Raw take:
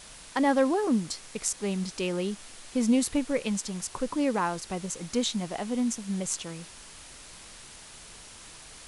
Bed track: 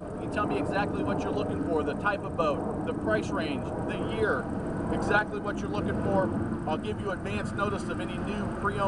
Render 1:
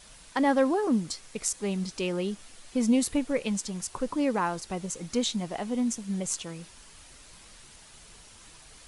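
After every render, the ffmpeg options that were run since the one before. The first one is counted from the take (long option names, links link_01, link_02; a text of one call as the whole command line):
ffmpeg -i in.wav -af "afftdn=noise_reduction=6:noise_floor=-48" out.wav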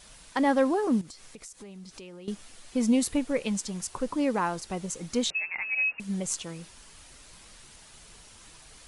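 ffmpeg -i in.wav -filter_complex "[0:a]asettb=1/sr,asplit=3[link_01][link_02][link_03];[link_01]atrim=end=1.014[link_04];[link_02]atrim=start=1.01:end=2.28,asetpts=PTS-STARTPTS,afade=type=in:duration=0.004:curve=qsin,afade=type=out:start_time=1.266:duration=0.004:curve=qsin,acompressor=threshold=-42dB:ratio=8:attack=3.2:release=140:knee=1:detection=peak[link_05];[link_03]atrim=start=2.276[link_06];[link_04][link_05]acrossfade=duration=0.004:curve1=hsin:curve2=qsin[link_07];[link_07][link_06]acrossfade=duration=0.004:curve1=qsin:curve2=hsin,asettb=1/sr,asplit=3[link_08][link_09][link_10];[link_08]atrim=end=5.304[link_11];[link_09]atrim=start=5.3:end=6,asetpts=PTS-STARTPTS,afade=type=in:duration=0.004:curve=qsin,afade=type=out:start_time=0.696:duration=0.004:curve=qsin,lowpass=frequency=2400:width_type=q:width=0.5098,lowpass=frequency=2400:width_type=q:width=0.6013,lowpass=frequency=2400:width_type=q:width=0.9,lowpass=frequency=2400:width_type=q:width=2.563,afreqshift=-2800[link_12];[link_10]atrim=start=5.996[link_13];[link_11][link_12]acrossfade=duration=0.004:curve1=hsin:curve2=qsin[link_14];[link_14][link_13]acrossfade=duration=0.004:curve1=qsin:curve2=hsin" out.wav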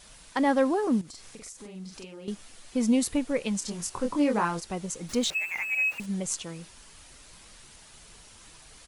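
ffmpeg -i in.wav -filter_complex "[0:a]asettb=1/sr,asplit=3[link_01][link_02][link_03];[link_01]atrim=end=1.094[link_04];[link_02]atrim=start=1.09:end=2.31,asetpts=PTS-STARTPTS,afade=type=in:duration=0.004:curve=qsin,afade=type=out:start_time=1.216:duration=0.004:curve=qsin,asplit=2[link_05][link_06];[link_06]adelay=43,volume=-2.5dB[link_07];[link_05][link_07]amix=inputs=2:normalize=0,atrim=end_sample=53802[link_08];[link_03]atrim=start=2.306[link_09];[link_04][link_08]acrossfade=duration=0.004:curve1=hsin:curve2=qsin[link_10];[link_10][link_09]acrossfade=duration=0.004:curve1=qsin:curve2=hsin,asplit=3[link_11][link_12][link_13];[link_11]afade=type=out:start_time=3.61:duration=0.02[link_14];[link_12]asplit=2[link_15][link_16];[link_16]adelay=24,volume=-3.5dB[link_17];[link_15][link_17]amix=inputs=2:normalize=0,afade=type=in:start_time=3.61:duration=0.02,afade=type=out:start_time=4.59:duration=0.02[link_18];[link_13]afade=type=in:start_time=4.59:duration=0.02[link_19];[link_14][link_18][link_19]amix=inputs=3:normalize=0,asettb=1/sr,asplit=3[link_20][link_21][link_22];[link_20]atrim=end=5.094[link_23];[link_21]atrim=start=5.09:end=6.06,asetpts=PTS-STARTPTS,afade=type=in:duration=0.004:curve=qsin,afade=type=out:start_time=0.966:duration=0.004:curve=qsin,aeval=exprs='val(0)+0.5*0.00944*sgn(val(0))':channel_layout=same[link_24];[link_22]atrim=start=6.056[link_25];[link_23][link_24]acrossfade=duration=0.004:curve1=hsin:curve2=qsin[link_26];[link_26][link_25]acrossfade=duration=0.004:curve1=qsin:curve2=hsin" out.wav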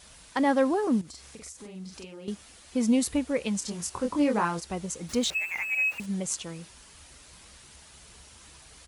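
ffmpeg -i in.wav -af "highpass=43,equalizer=frequency=68:width_type=o:width=0.32:gain=11" out.wav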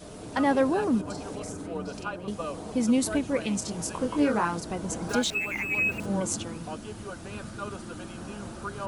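ffmpeg -i in.wav -i bed.wav -filter_complex "[1:a]volume=-7.5dB[link_01];[0:a][link_01]amix=inputs=2:normalize=0" out.wav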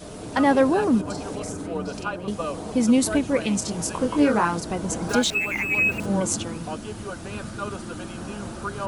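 ffmpeg -i in.wav -af "volume=5dB" out.wav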